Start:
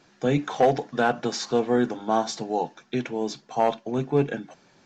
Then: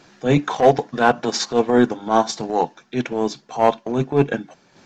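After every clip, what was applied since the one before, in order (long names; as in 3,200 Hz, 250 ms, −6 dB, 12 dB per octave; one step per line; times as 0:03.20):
transient designer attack −11 dB, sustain −7 dB
dynamic equaliser 1,000 Hz, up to +5 dB, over −49 dBFS, Q 7
level +9 dB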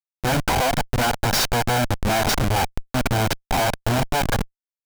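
lower of the sound and its delayed copy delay 1.3 ms
comparator with hysteresis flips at −31 dBFS
level +3 dB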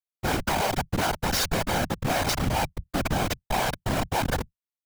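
random phases in short frames
level −5 dB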